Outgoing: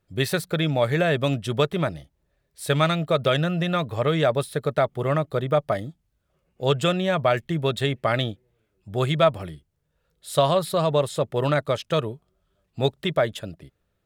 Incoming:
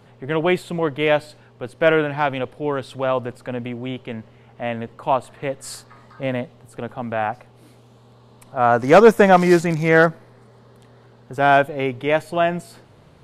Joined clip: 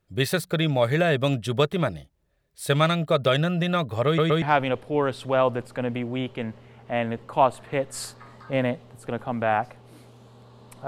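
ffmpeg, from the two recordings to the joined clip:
-filter_complex "[0:a]apad=whole_dur=10.87,atrim=end=10.87,asplit=3[a][b][c];[a]atrim=end=4.182[d];[b]atrim=start=4.058:end=4.182[e];[c]atrim=start=4.058:end=4.182[f];[1:a]atrim=start=2.118:end=8.57[g];[d][e]acrossfade=d=0.004:c1=hsin:c2=hsin[h];[h][f]acrossfade=d=0.004:c1=hsin:c2=hsin[i];[i][g]acrossfade=d=0.004:c1=hsin:c2=hsin"

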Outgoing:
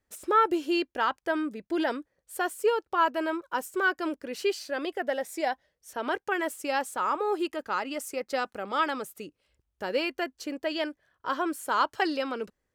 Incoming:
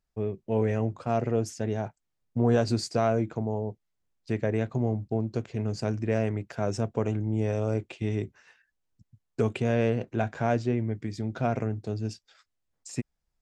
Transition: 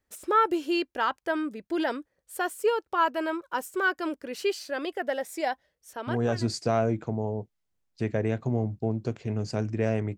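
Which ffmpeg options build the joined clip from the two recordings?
-filter_complex "[0:a]apad=whole_dur=10.17,atrim=end=10.17,atrim=end=6.53,asetpts=PTS-STARTPTS[a];[1:a]atrim=start=2.04:end=6.46,asetpts=PTS-STARTPTS[b];[a][b]acrossfade=d=0.78:c1=tri:c2=tri"

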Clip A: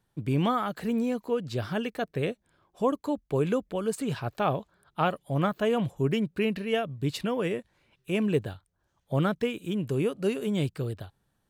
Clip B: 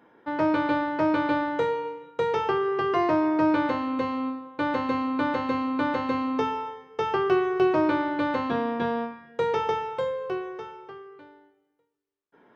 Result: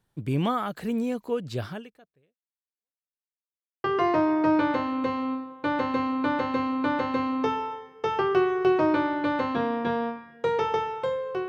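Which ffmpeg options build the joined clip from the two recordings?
-filter_complex "[0:a]apad=whole_dur=11.48,atrim=end=11.48,asplit=2[a][b];[a]atrim=end=3.11,asetpts=PTS-STARTPTS,afade=t=out:st=1.66:d=1.45:c=exp[c];[b]atrim=start=3.11:end=3.84,asetpts=PTS-STARTPTS,volume=0[d];[1:a]atrim=start=2.79:end=10.43,asetpts=PTS-STARTPTS,afade=t=in:d=0.004:c=hsin[e];[c][d][e]concat=n=3:v=0:a=1"

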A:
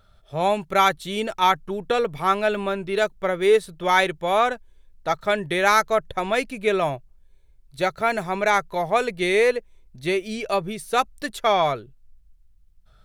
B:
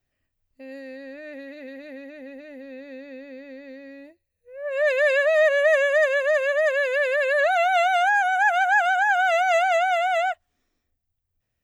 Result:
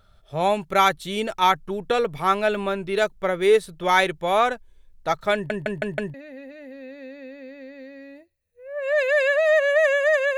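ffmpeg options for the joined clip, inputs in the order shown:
-filter_complex "[0:a]apad=whole_dur=10.37,atrim=end=10.37,asplit=5[a][b][c][d][e];[a]atrim=end=5.502[f];[b]atrim=start=5.338:end=5.502[g];[c]atrim=start=5.338:end=5.502[h];[d]atrim=start=5.338:end=5.502[i];[e]atrim=start=5.338:end=5.502[j];[1:a]atrim=start=2.028:end=6.26[k];[f][g]acrossfade=d=0.004:c1=hsin:c2=hsin[l];[l][h]acrossfade=d=0.004:c1=hsin:c2=hsin[m];[m][i]acrossfade=d=0.004:c1=hsin:c2=hsin[n];[n][j]acrossfade=d=0.004:c1=hsin:c2=hsin[o];[o][k]acrossfade=d=0.004:c1=hsin:c2=hsin"

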